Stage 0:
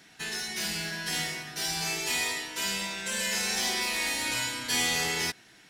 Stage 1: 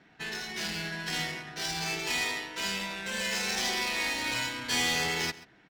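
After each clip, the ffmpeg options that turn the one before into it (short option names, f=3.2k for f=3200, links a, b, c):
-filter_complex "[0:a]adynamicsmooth=sensitivity=7:basefreq=2k,asplit=2[a][b];[b]adelay=134.1,volume=-18dB,highshelf=f=4k:g=-3.02[c];[a][c]amix=inputs=2:normalize=0"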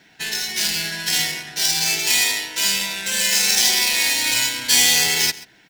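-af "bandreject=f=1.2k:w=5.2,crystalizer=i=5.5:c=0,volume=3dB"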